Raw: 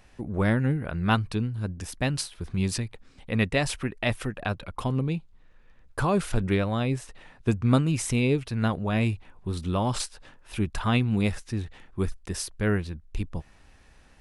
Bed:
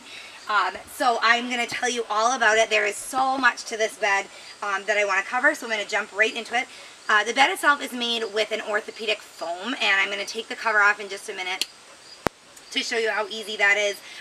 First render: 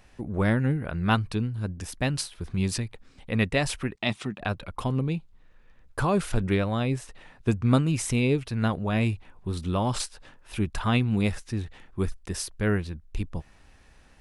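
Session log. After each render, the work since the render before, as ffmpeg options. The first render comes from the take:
-filter_complex "[0:a]asettb=1/sr,asplit=3[s0][s1][s2];[s0]atrim=end=3.954[s3];[s1]atrim=start=3.95:end=4.41,asetpts=PTS-STARTPTS,afade=t=in:d=0.004:c=qsin,afade=t=out:st=0.456:d=0.004:c=qsin,highpass=130,equalizer=f=200:t=q:w=4:g=6,equalizer=f=520:t=q:w=4:g=-10,equalizer=f=1600:t=q:w=4:g=-8,equalizer=f=3700:t=q:w=4:g=5,lowpass=f=8300:w=0.5412,lowpass=f=8300:w=1.3066[s4];[s2]atrim=start=4.406[s5];[s3][s4]acrossfade=d=0.004:c1=hsin:c2=qsin[s6];[s6][s5]acrossfade=d=0.004:c1=qsin:c2=hsin"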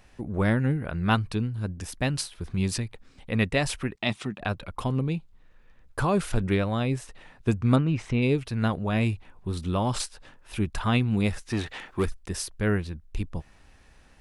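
-filter_complex "[0:a]asplit=3[s0][s1][s2];[s0]afade=t=out:st=7.75:d=0.02[s3];[s1]lowpass=2700,afade=t=in:st=7.75:d=0.02,afade=t=out:st=8.21:d=0.02[s4];[s2]afade=t=in:st=8.21:d=0.02[s5];[s3][s4][s5]amix=inputs=3:normalize=0,asplit=3[s6][s7][s8];[s6]afade=t=out:st=11.5:d=0.02[s9];[s7]asplit=2[s10][s11];[s11]highpass=f=720:p=1,volume=10,asoftclip=type=tanh:threshold=0.158[s12];[s10][s12]amix=inputs=2:normalize=0,lowpass=f=6300:p=1,volume=0.501,afade=t=in:st=11.5:d=0.02,afade=t=out:st=12.04:d=0.02[s13];[s8]afade=t=in:st=12.04:d=0.02[s14];[s9][s13][s14]amix=inputs=3:normalize=0"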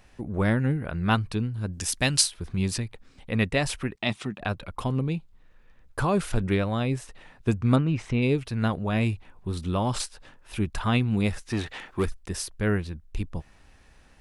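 -filter_complex "[0:a]asplit=3[s0][s1][s2];[s0]afade=t=out:st=1.72:d=0.02[s3];[s1]equalizer=f=7200:w=0.33:g=12.5,afade=t=in:st=1.72:d=0.02,afade=t=out:st=2.3:d=0.02[s4];[s2]afade=t=in:st=2.3:d=0.02[s5];[s3][s4][s5]amix=inputs=3:normalize=0"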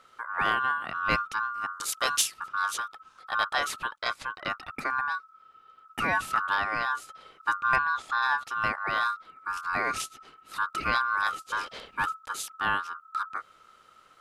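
-af "asoftclip=type=tanh:threshold=0.335,aeval=exprs='val(0)*sin(2*PI*1300*n/s)':c=same"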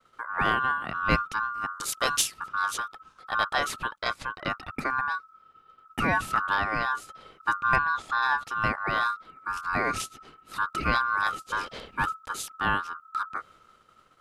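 -af "agate=range=0.0224:threshold=0.00251:ratio=3:detection=peak,lowshelf=f=400:g=9.5"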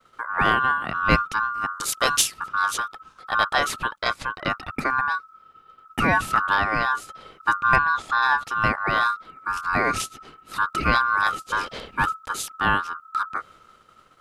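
-af "volume=1.78"

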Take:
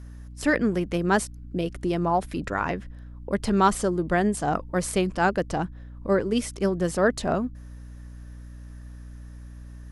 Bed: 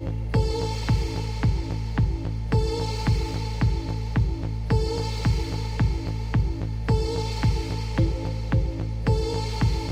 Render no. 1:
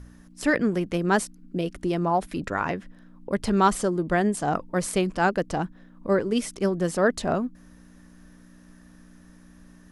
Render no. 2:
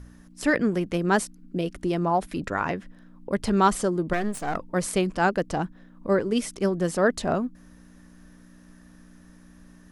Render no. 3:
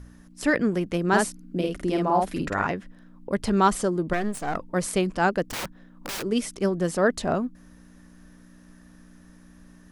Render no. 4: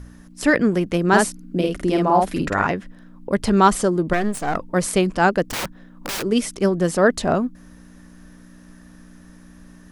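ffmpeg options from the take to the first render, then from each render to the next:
-af "bandreject=f=60:t=h:w=4,bandreject=f=120:t=h:w=4"
-filter_complex "[0:a]asettb=1/sr,asplit=3[s0][s1][s2];[s0]atrim=end=4.134[s3];[s1]atrim=start=4.13:end=4.56,asetpts=PTS-STARTPTS,afade=t=in:d=0.004:c=qsin,afade=t=out:st=0.426:d=0.004:c=qsin,aeval=exprs='if(lt(val(0),0),0.251*val(0),val(0))':c=same[s4];[s2]atrim=start=4.556[s5];[s3][s4]acrossfade=d=0.004:c1=hsin:c2=qsin[s6];[s6][s5]acrossfade=d=0.004:c1=qsin:c2=hsin"
-filter_complex "[0:a]asettb=1/sr,asplit=3[s0][s1][s2];[s0]atrim=end=1.084[s3];[s1]atrim=start=1.08:end=2.67,asetpts=PTS-STARTPTS,afade=t=in:d=0.004:c=qsin,afade=t=out:st=1.586:d=0.004:c=qsin,asplit=2[s4][s5];[s5]adelay=50,volume=0.75[s6];[s4][s6]amix=inputs=2:normalize=0,atrim=end_sample=70119[s7];[s2]atrim=start=2.666[s8];[s3][s7]acrossfade=d=0.004:c1=hsin:c2=qsin[s9];[s9][s8]acrossfade=d=0.004:c1=qsin:c2=hsin,asplit=3[s10][s11][s12];[s10]afade=t=out:st=5.43:d=0.02[s13];[s11]aeval=exprs='(mod(22.4*val(0)+1,2)-1)/22.4':c=same,afade=t=in:st=5.43:d=0.02,afade=t=out:st=6.21:d=0.02[s14];[s12]afade=t=in:st=6.21:d=0.02[s15];[s13][s14][s15]amix=inputs=3:normalize=0"
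-af "volume=1.88"

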